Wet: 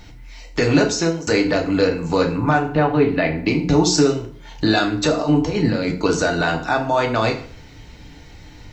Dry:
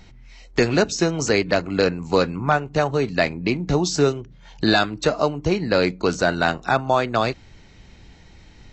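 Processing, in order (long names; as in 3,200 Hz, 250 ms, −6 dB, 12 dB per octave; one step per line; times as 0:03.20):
0:00.85–0:01.27: fade out
0:02.70–0:03.39: low-pass filter 3,400 Hz 24 dB per octave
0:05.20–0:05.92: compressor whose output falls as the input rises −26 dBFS, ratio −1
brickwall limiter −13.5 dBFS, peak gain reduction 9 dB
bit reduction 12 bits
feedback delay network reverb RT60 0.52 s, low-frequency decay 1×, high-frequency decay 0.8×, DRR 1.5 dB
level +4 dB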